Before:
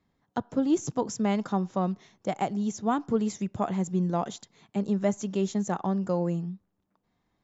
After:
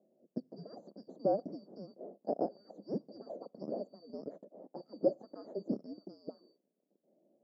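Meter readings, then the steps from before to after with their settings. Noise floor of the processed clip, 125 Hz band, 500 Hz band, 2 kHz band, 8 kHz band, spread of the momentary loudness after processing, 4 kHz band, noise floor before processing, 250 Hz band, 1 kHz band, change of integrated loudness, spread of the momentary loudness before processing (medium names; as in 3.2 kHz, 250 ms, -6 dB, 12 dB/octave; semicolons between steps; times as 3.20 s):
-82 dBFS, -20.0 dB, -6.5 dB, under -30 dB, no reading, 17 LU, -17.0 dB, -77 dBFS, -15.0 dB, -14.0 dB, -11.0 dB, 8 LU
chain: four frequency bands reordered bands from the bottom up 2341; elliptic band-pass 190–620 Hz, stop band 60 dB; trim +17.5 dB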